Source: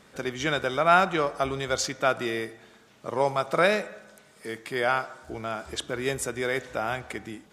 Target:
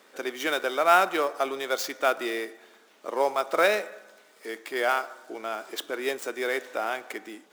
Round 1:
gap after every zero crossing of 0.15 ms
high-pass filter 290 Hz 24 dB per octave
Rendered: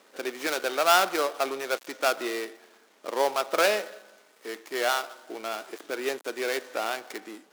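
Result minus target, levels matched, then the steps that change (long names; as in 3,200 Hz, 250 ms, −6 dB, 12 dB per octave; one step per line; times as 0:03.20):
gap after every zero crossing: distortion +12 dB
change: gap after every zero crossing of 0.036 ms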